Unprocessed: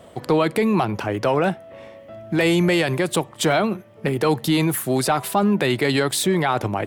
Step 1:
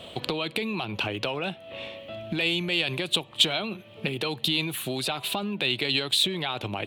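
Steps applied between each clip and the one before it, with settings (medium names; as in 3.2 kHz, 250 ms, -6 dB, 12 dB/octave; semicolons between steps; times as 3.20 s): compression 10:1, threshold -28 dBFS, peak gain reduction 14 dB; high-order bell 3.2 kHz +15 dB 1 oct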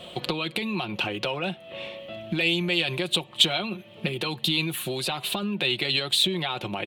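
comb 5.6 ms, depth 49%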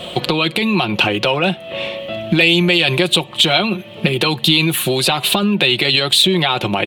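loudness maximiser +14 dB; trim -1 dB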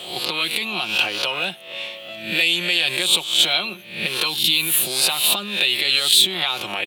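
reverse spectral sustain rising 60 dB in 0.54 s; tilt EQ +3.5 dB/octave; trim -11 dB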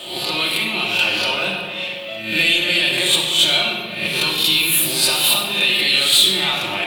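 saturation -8 dBFS, distortion -19 dB; simulated room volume 2200 m³, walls mixed, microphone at 2.6 m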